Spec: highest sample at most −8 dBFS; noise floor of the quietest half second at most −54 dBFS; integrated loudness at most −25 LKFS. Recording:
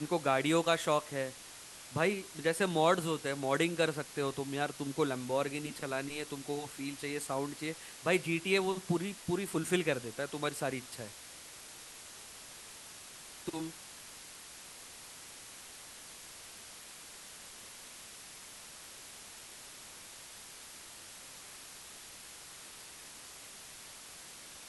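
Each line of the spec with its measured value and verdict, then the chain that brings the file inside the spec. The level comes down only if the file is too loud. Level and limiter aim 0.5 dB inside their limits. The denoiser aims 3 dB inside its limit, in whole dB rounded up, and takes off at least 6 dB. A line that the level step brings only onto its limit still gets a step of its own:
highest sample −14.0 dBFS: in spec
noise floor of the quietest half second −51 dBFS: out of spec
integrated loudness −34.0 LKFS: in spec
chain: broadband denoise 6 dB, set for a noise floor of −51 dBFS

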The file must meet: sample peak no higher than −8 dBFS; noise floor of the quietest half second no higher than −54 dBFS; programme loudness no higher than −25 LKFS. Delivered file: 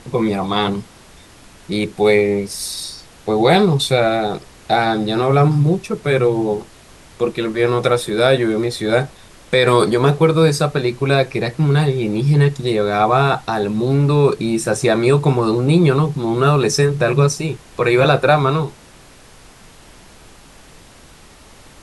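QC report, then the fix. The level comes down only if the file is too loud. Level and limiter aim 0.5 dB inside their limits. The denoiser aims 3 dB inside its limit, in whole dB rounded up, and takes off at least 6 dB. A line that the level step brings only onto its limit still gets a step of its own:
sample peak −2.0 dBFS: out of spec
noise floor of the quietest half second −44 dBFS: out of spec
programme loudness −16.5 LKFS: out of spec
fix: broadband denoise 6 dB, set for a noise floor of −44 dBFS
level −9 dB

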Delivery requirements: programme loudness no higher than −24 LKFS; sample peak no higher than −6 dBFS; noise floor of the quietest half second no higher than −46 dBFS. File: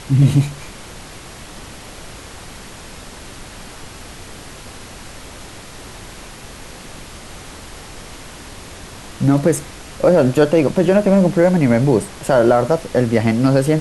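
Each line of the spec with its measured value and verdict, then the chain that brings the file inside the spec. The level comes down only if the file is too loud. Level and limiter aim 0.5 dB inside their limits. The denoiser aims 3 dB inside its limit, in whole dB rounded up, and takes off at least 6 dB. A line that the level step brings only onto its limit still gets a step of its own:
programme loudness −15.5 LKFS: out of spec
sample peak −3.0 dBFS: out of spec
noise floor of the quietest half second −36 dBFS: out of spec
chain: broadband denoise 6 dB, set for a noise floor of −36 dBFS
level −9 dB

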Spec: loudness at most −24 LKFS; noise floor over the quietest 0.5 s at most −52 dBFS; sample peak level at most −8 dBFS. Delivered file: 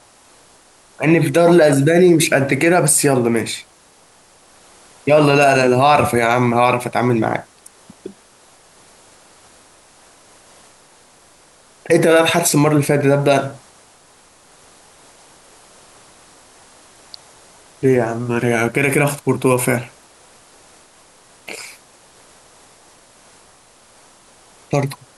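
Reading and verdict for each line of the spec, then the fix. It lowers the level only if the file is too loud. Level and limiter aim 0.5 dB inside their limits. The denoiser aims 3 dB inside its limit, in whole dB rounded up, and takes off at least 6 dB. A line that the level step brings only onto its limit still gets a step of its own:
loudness −15.0 LKFS: out of spec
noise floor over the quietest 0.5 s −50 dBFS: out of spec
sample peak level −3.0 dBFS: out of spec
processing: level −9.5 dB

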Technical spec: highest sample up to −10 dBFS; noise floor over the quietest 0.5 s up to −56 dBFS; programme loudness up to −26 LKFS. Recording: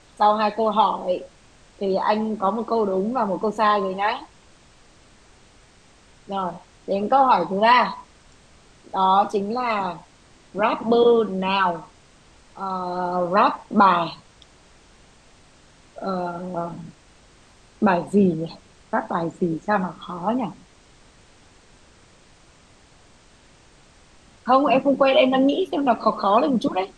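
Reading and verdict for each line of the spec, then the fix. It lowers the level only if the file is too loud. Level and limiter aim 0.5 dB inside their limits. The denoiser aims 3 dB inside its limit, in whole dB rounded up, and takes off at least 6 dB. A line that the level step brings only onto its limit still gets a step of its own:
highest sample −4.5 dBFS: out of spec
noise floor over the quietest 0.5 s −53 dBFS: out of spec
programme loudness −21.5 LKFS: out of spec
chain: level −5 dB
brickwall limiter −10.5 dBFS

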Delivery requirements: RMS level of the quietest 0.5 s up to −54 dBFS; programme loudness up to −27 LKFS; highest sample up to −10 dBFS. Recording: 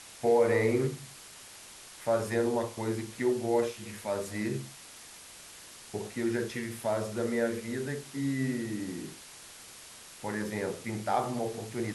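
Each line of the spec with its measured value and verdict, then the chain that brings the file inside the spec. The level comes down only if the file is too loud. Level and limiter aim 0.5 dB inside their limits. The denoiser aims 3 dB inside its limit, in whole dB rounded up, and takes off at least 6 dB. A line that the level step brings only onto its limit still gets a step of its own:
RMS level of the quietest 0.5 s −50 dBFS: out of spec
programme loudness −31.5 LKFS: in spec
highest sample −14.5 dBFS: in spec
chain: broadband denoise 7 dB, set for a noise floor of −50 dBFS

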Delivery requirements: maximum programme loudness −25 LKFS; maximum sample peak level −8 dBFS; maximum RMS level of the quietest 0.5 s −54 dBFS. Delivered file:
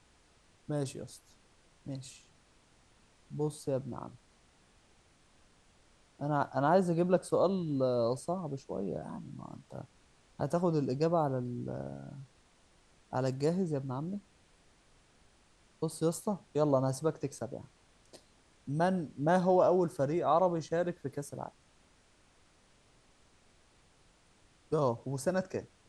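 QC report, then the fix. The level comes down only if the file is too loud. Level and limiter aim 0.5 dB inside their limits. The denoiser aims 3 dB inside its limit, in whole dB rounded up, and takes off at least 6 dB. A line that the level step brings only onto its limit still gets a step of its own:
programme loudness −33.0 LKFS: in spec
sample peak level −14.0 dBFS: in spec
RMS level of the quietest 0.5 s −65 dBFS: in spec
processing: no processing needed

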